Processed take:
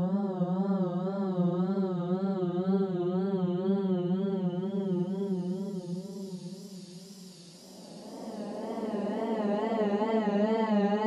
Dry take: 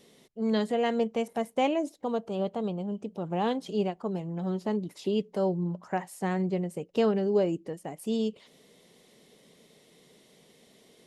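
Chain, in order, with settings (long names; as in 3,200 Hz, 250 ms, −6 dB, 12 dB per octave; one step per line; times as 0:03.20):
extreme stretch with random phases 46×, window 0.10 s, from 0:04.46
tape wow and flutter 93 cents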